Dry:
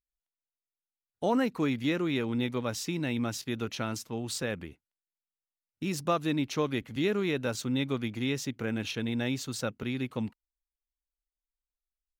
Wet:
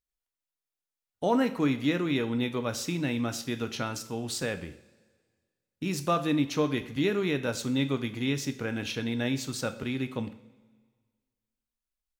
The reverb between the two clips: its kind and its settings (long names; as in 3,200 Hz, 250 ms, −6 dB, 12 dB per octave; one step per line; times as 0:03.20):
coupled-rooms reverb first 0.5 s, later 1.7 s, from −16 dB, DRR 8.5 dB
level +1 dB